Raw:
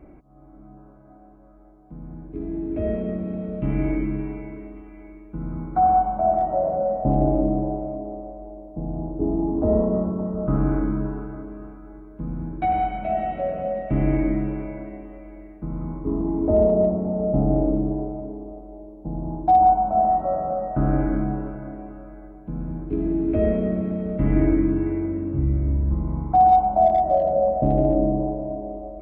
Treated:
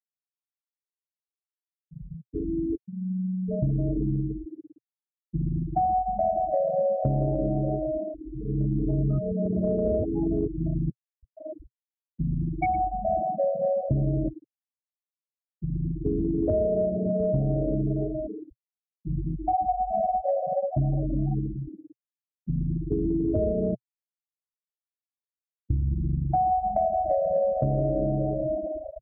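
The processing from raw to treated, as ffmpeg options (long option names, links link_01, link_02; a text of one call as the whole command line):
ffmpeg -i in.wav -filter_complex "[0:a]asplit=3[link_01][link_02][link_03];[link_01]afade=type=out:start_time=2.75:duration=0.02[link_04];[link_02]asuperpass=centerf=190:order=12:qfactor=5.2,afade=type=in:start_time=2.75:duration=0.02,afade=type=out:start_time=3.47:duration=0.02[link_05];[link_03]afade=type=in:start_time=3.47:duration=0.02[link_06];[link_04][link_05][link_06]amix=inputs=3:normalize=0,asplit=2[link_07][link_08];[link_08]afade=type=in:start_time=12.7:duration=0.01,afade=type=out:start_time=13.42:duration=0.01,aecho=0:1:410|820|1230:0.398107|0.0796214|0.0159243[link_09];[link_07][link_09]amix=inputs=2:normalize=0,asplit=3[link_10][link_11][link_12];[link_10]afade=type=out:start_time=18.53:duration=0.02[link_13];[link_11]flanger=delay=19.5:depth=3.3:speed=2.9,afade=type=in:start_time=18.53:duration=0.02,afade=type=out:start_time=21.35:duration=0.02[link_14];[link_12]afade=type=in:start_time=21.35:duration=0.02[link_15];[link_13][link_14][link_15]amix=inputs=3:normalize=0,asplit=6[link_16][link_17][link_18][link_19][link_20][link_21];[link_16]atrim=end=8.142[link_22];[link_17]atrim=start=8.138:end=11.532,asetpts=PTS-STARTPTS,areverse[link_23];[link_18]atrim=start=11.528:end=14.29,asetpts=PTS-STARTPTS,afade=type=out:start_time=2.758:duration=0.004:curve=hsin:silence=0.199526[link_24];[link_19]atrim=start=14.29:end=23.75,asetpts=PTS-STARTPTS,afade=type=in:duration=1.75:curve=qua:silence=0.199526,afade=type=out:start_time=9.456:duration=0.004:curve=hsin[link_25];[link_20]atrim=start=23.75:end=25.7,asetpts=PTS-STARTPTS,volume=0[link_26];[link_21]atrim=start=25.7,asetpts=PTS-STARTPTS,afade=type=in:duration=0.004:curve=hsin[link_27];[link_22][link_23]acrossfade=duration=0.004:curve1=hsin:curve2=hsin[link_28];[link_24][link_25][link_26][link_27]concat=n=4:v=0:a=1[link_29];[link_28][link_29]acrossfade=duration=0.004:curve1=hsin:curve2=hsin,afftfilt=real='re*gte(hypot(re,im),0.126)':imag='im*gte(hypot(re,im),0.126)':win_size=1024:overlap=0.75,equalizer=frequency=125:width_type=o:width=1:gain=11,equalizer=frequency=250:width_type=o:width=1:gain=-5,equalizer=frequency=500:width_type=o:width=1:gain=9,equalizer=frequency=1000:width_type=o:width=1:gain=-7,equalizer=frequency=2000:width_type=o:width=1:gain=11,acompressor=threshold=-22dB:ratio=6" out.wav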